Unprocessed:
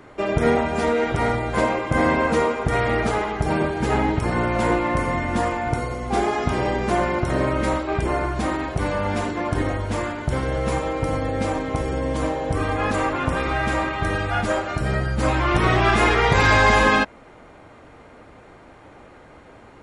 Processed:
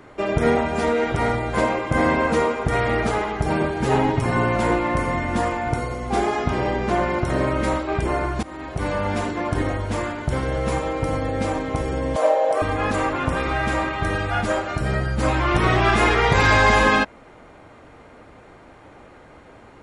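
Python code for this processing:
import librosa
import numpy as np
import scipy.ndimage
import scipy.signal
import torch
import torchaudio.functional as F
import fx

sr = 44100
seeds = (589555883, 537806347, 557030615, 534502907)

y = fx.comb(x, sr, ms=7.5, depth=0.68, at=(3.85, 4.56))
y = fx.air_absorb(y, sr, metres=54.0, at=(6.42, 7.09))
y = fx.highpass_res(y, sr, hz=610.0, q=4.8, at=(12.16, 12.62))
y = fx.edit(y, sr, fx.fade_in_from(start_s=8.43, length_s=0.48, floor_db=-21.0), tone=tone)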